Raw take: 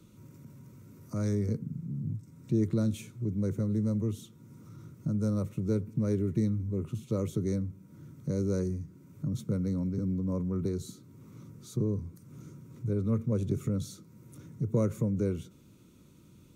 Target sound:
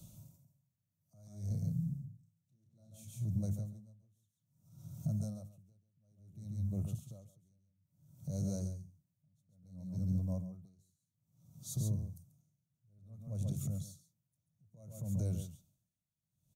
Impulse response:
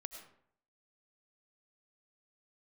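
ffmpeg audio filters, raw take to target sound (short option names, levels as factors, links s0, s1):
-filter_complex "[0:a]firequalizer=gain_entry='entry(160,0);entry(240,-12);entry(420,-20);entry(670,8);entry(990,-12);entry(1800,-19);entry(3100,-4);entry(6400,4);entry(11000,7)':delay=0.05:min_phase=1,alimiter=level_in=2.37:limit=0.0631:level=0:latency=1:release=209,volume=0.422,asettb=1/sr,asplit=3[s0][s1][s2];[s0]atrim=end=1.474[s3];[s1]atrim=start=1.47:end=3.05,asetpts=PTS-STARTPTS,afade=t=in:d=0.004:c=qsin,afade=t=out:st=1.576:d=0.004:c=qsin,asplit=2[s4][s5];[s5]adelay=31,volume=0.562[s6];[s4][s6]amix=inputs=2:normalize=0,atrim=end_sample=69678[s7];[s2]atrim=start=3.046[s8];[s3][s7]acrossfade=d=0.004:c1=hsin:c2=qsin[s9];[s9][s8]acrossfade=d=0.004:c1=qsin:c2=hsin,aecho=1:1:138:0.501,aeval=exprs='val(0)*pow(10,-39*(0.5-0.5*cos(2*PI*0.59*n/s))/20)':c=same,volume=1.58"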